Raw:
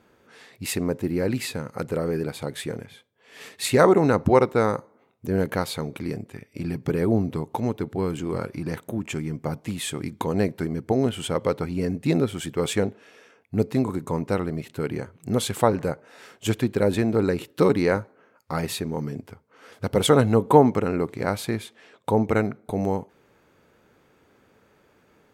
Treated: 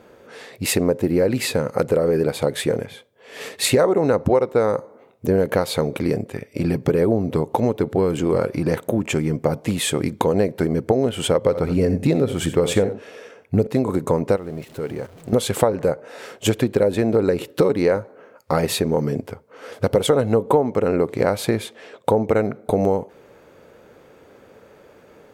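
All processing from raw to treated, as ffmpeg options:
ffmpeg -i in.wav -filter_complex "[0:a]asettb=1/sr,asplit=3[link_01][link_02][link_03];[link_01]atrim=end=11.384[link_04];[link_02]atrim=start=11.38:end=13.67,asetpts=PTS-STARTPTS,afade=type=in:duration=0.004:curve=qsin,afade=type=out:start_time=2.286:duration=0.004:curve=qsin,lowshelf=frequency=110:gain=8,aecho=1:1:64|87:0.178|0.158,atrim=end_sample=100989[link_05];[link_03]atrim=start=13.666[link_06];[link_04][link_05]acrossfade=duration=0.004:curve1=hsin:curve2=qsin[link_07];[link_07][link_06]acrossfade=duration=0.004:curve1=qsin:curve2=hsin,asettb=1/sr,asplit=3[link_08][link_09][link_10];[link_08]atrim=end=14.364[link_11];[link_09]atrim=start=14.36:end=15.33,asetpts=PTS-STARTPTS,afade=type=in:duration=0.004:curve=qsin,afade=type=out:start_time=0.966:duration=0.004:curve=qsin,aeval=exprs='val(0)+0.5*0.0126*sgn(val(0))':channel_layout=same,agate=range=-11dB:threshold=-35dB:ratio=16:release=100:detection=peak,acompressor=threshold=-44dB:ratio=2:attack=3.2:release=140:knee=1:detection=peak[link_12];[link_10]atrim=start=15.326[link_13];[link_11][link_12]acrossfade=duration=0.004:curve1=hsin:curve2=qsin[link_14];[link_14][link_13]acrossfade=duration=0.004:curve1=qsin:curve2=hsin,equalizer=frequency=530:width_type=o:width=0.85:gain=8.5,acompressor=threshold=-22dB:ratio=6,volume=7.5dB" out.wav

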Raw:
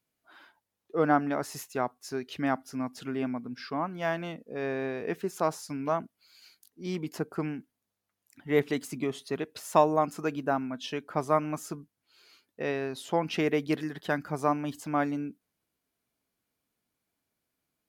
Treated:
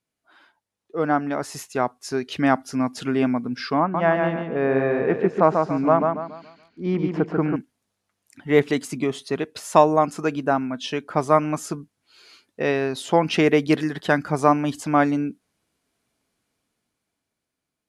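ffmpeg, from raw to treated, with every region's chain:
ffmpeg -i in.wav -filter_complex "[0:a]asettb=1/sr,asplit=3[link_01][link_02][link_03];[link_01]atrim=end=3.804[link_04];[link_02]atrim=start=3.8:end=7.56,asetpts=PTS-STARTPTS,afade=type=in:duration=0.004:curve=qsin,afade=type=out:start_time=3.756:duration=0.004:curve=qsin,lowpass=1800,aecho=1:1:141|282|423|564|705:0.596|0.214|0.0772|0.0278|0.01,atrim=end_sample=165816[link_05];[link_03]atrim=start=7.556[link_06];[link_04][link_05]acrossfade=duration=0.004:curve1=hsin:curve2=qsin[link_07];[link_07][link_06]acrossfade=duration=0.004:curve1=qsin:curve2=hsin,lowpass=frequency=11000:width=0.5412,lowpass=frequency=11000:width=1.3066,dynaudnorm=framelen=240:gausssize=13:maxgain=12.5dB" out.wav

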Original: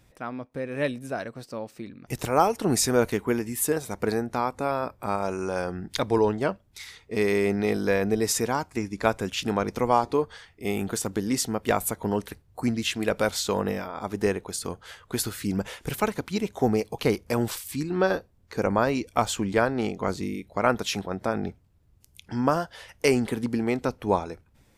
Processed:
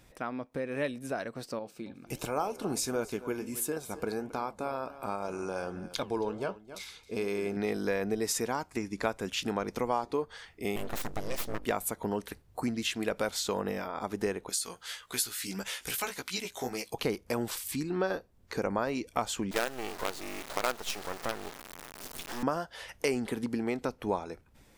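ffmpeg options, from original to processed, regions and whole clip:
ffmpeg -i in.wav -filter_complex "[0:a]asettb=1/sr,asplit=3[link_01][link_02][link_03];[link_01]atrim=end=1.594[link_04];[link_02]atrim=start=1.59:end=7.57,asetpts=PTS-STARTPTS,afade=type=in:duration=0.004:curve=qsin,afade=type=out:start_time=5.976:duration=0.004:curve=qsin,aecho=1:1:269:0.112,atrim=end_sample=263718,flanger=delay=5.5:depth=9.6:regen=-77:speed=1.4:shape=sinusoidal,asuperstop=centerf=1900:order=4:qfactor=6.4[link_05];[link_03]atrim=start=7.566[link_06];[link_04][link_05]acrossfade=duration=0.004:curve1=hsin:curve2=qsin[link_07];[link_07][link_06]acrossfade=duration=0.004:curve1=qsin:curve2=hsin,asettb=1/sr,asplit=3[link_08][link_09][link_10];[link_08]atrim=end=10.764[link_11];[link_09]atrim=start=10.76:end=11.65,asetpts=PTS-STARTPTS,afade=type=in:duration=0.004:curve=qsin,afade=type=out:start_time=0.886:duration=0.004:curve=qsin,aeval=exprs='val(0)+0.0141*(sin(2*PI*50*n/s)+sin(2*PI*2*50*n/s)/2+sin(2*PI*3*50*n/s)/3+sin(2*PI*4*50*n/s)/4+sin(2*PI*5*50*n/s)/5)':channel_layout=same,aeval=exprs='abs(val(0))':channel_layout=same[link_12];[link_10]atrim=start=11.646[link_13];[link_11][link_12]acrossfade=duration=0.004:curve1=hsin:curve2=qsin[link_14];[link_14][link_13]acrossfade=duration=0.004:curve1=qsin:curve2=hsin,asettb=1/sr,asplit=3[link_15][link_16][link_17];[link_15]atrim=end=14.494[link_18];[link_16]atrim=start=14.49:end=16.94,asetpts=PTS-STARTPTS,afade=type=in:duration=0.004:curve=qsin,afade=type=out:start_time=2.446:duration=0.004:curve=qsin,tiltshelf=frequency=1300:gain=-9,flanger=delay=15:depth=2.2:speed=1.7[link_19];[link_17]atrim=start=16.936[link_20];[link_18][link_19]acrossfade=duration=0.004:curve1=hsin:curve2=qsin[link_21];[link_21][link_20]acrossfade=duration=0.004:curve1=qsin:curve2=hsin,asettb=1/sr,asplit=3[link_22][link_23][link_24];[link_22]atrim=end=19.514[link_25];[link_23]atrim=start=19.51:end=22.43,asetpts=PTS-STARTPTS,afade=type=in:duration=0.004:curve=qsin,afade=type=out:start_time=2.916:duration=0.004:curve=qsin,aeval=exprs='val(0)+0.5*0.0251*sgn(val(0))':channel_layout=same,highpass=400,acrusher=bits=4:dc=4:mix=0:aa=0.000001[link_26];[link_24]atrim=start=22.426[link_27];[link_25][link_26]acrossfade=duration=0.004:curve1=hsin:curve2=qsin[link_28];[link_28][link_27]acrossfade=duration=0.004:curve1=qsin:curve2=hsin,equalizer=frequency=99:width_type=o:width=1.5:gain=-6,acompressor=threshold=-37dB:ratio=2,volume=2.5dB" out.wav

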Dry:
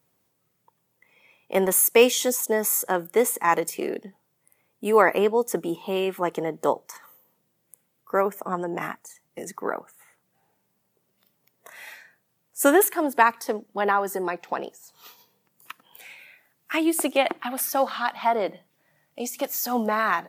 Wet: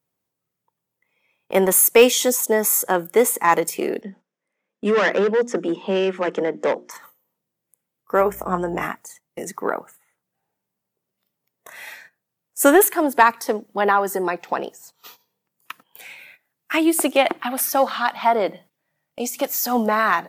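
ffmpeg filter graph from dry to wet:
ffmpeg -i in.wav -filter_complex "[0:a]asettb=1/sr,asplit=3[link_01][link_02][link_03];[link_01]atrim=end=4.014[link_04];[link_02]atrim=start=4.01:end=6.91,asetpts=PTS-STARTPTS,afade=type=in:duration=0.004:curve=qsin,afade=type=out:start_time=2.896:duration=0.004:curve=qsin,bandreject=frequency=60:width_type=h:width=6,bandreject=frequency=120:width_type=h:width=6,bandreject=frequency=180:width_type=h:width=6,bandreject=frequency=240:width_type=h:width=6,bandreject=frequency=300:width_type=h:width=6,bandreject=frequency=360:width_type=h:width=6,asoftclip=type=hard:threshold=-21dB,highpass=frequency=200:width=0.5412,highpass=frequency=200:width=1.3066,equalizer=frequency=200:width_type=q:width=4:gain=8,equalizer=frequency=530:width_type=q:width=4:gain=4,equalizer=frequency=840:width_type=q:width=4:gain=-4,equalizer=frequency=1700:width_type=q:width=4:gain=5,equalizer=frequency=4300:width_type=q:width=4:gain=-6,lowpass=frequency=6200:width=0.5412,lowpass=frequency=6200:width=1.3066[link_05];[link_03]atrim=start=6.906[link_06];[link_04][link_05]acrossfade=duration=0.004:curve1=hsin:curve2=qsin[link_07];[link_07][link_06]acrossfade=duration=0.004:curve1=qsin:curve2=hsin,asettb=1/sr,asplit=3[link_08][link_09][link_10];[link_08]atrim=end=8.194[link_11];[link_09]atrim=start=8.19:end=8.85,asetpts=PTS-STARTPTS,afade=type=in:duration=0.004:curve=qsin,afade=type=out:start_time=0.656:duration=0.004:curve=qsin,aeval=exprs='val(0)+0.00398*(sin(2*PI*60*n/s)+sin(2*PI*2*60*n/s)/2+sin(2*PI*3*60*n/s)/3+sin(2*PI*4*60*n/s)/4+sin(2*PI*5*60*n/s)/5)':channel_layout=same,asplit=2[link_12][link_13];[link_13]adelay=22,volume=-9.5dB[link_14];[link_12][link_14]amix=inputs=2:normalize=0,atrim=end_sample=29106[link_15];[link_10]atrim=start=8.846[link_16];[link_11][link_15]acrossfade=duration=0.004:curve1=hsin:curve2=qsin[link_17];[link_17][link_16]acrossfade=duration=0.004:curve1=qsin:curve2=hsin,agate=range=-14dB:threshold=-50dB:ratio=16:detection=peak,acontrast=21" out.wav

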